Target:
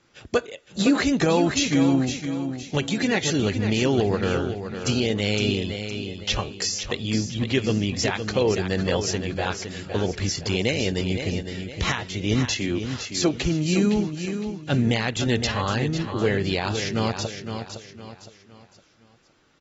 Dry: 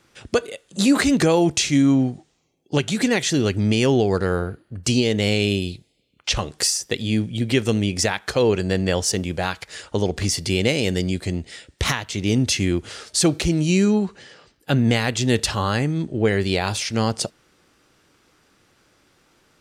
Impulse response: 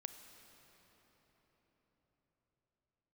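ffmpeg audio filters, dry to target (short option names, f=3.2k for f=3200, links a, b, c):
-filter_complex "[0:a]asettb=1/sr,asplit=3[a][b][c];[a]atrim=end=12.534[d];[b]atrim=start=12.53:end=13.34,asetpts=PTS-STARTPTS,afade=t=in:d=0.004:c=qsin,afade=t=out:st=0.806:d=0.004:c=qsin,acrossover=split=200|3000[e][f][g];[e]acompressor=threshold=-32dB:ratio=6[h];[h][f][g]amix=inputs=3:normalize=0[i];[c]atrim=start=13.336[j];[d][i]acrossfade=d=0.004:c1=hsin:c2=qsin[k];[k][j]acrossfade=d=0.004:c1=qsin:c2=hsin,aecho=1:1:512|1024|1536|2048:0.398|0.147|0.0545|0.0202,volume=-4dB" -ar 44100 -c:a aac -b:a 24k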